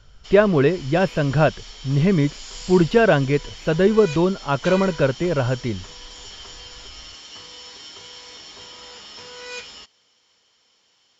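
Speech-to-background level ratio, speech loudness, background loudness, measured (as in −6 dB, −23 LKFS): 17.5 dB, −19.5 LKFS, −37.0 LKFS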